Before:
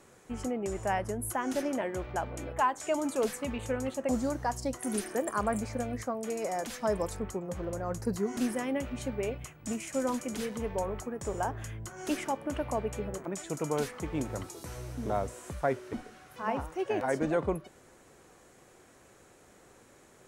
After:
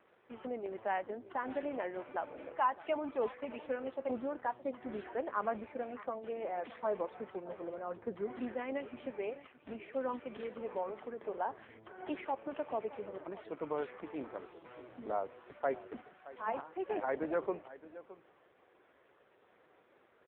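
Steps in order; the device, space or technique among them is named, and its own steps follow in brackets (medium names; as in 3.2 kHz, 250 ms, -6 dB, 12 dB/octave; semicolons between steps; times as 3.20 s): satellite phone (band-pass 340–3300 Hz; delay 618 ms -16.5 dB; trim -3 dB; AMR-NB 5.9 kbps 8 kHz)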